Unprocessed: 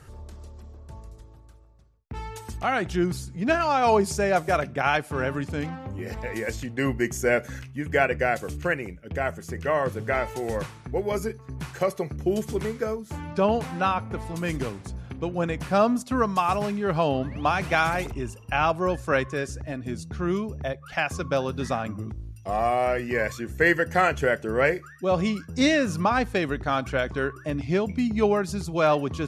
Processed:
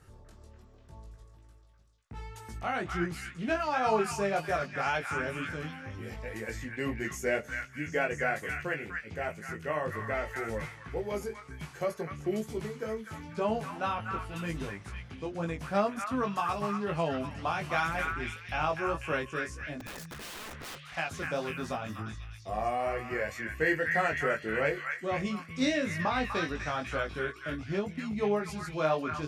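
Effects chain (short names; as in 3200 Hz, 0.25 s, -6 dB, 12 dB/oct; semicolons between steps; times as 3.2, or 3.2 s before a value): chorus 2 Hz, delay 18 ms, depth 2.1 ms; 19.8–20.79 wrapped overs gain 33.5 dB; delay with a stepping band-pass 0.247 s, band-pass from 1600 Hz, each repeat 0.7 oct, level -1 dB; gain -5 dB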